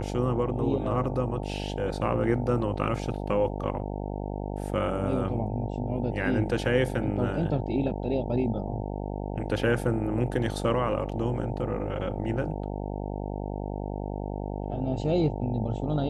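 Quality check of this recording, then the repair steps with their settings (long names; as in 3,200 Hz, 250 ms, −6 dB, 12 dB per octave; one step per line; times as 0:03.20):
mains buzz 50 Hz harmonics 18 −33 dBFS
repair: hum removal 50 Hz, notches 18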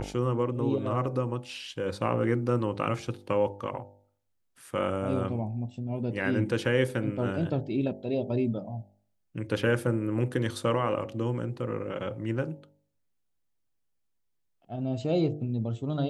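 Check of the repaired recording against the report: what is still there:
none of them is left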